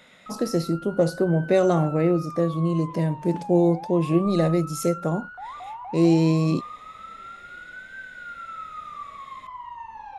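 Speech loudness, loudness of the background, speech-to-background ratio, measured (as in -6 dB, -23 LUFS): -23.0 LUFS, -38.0 LUFS, 15.0 dB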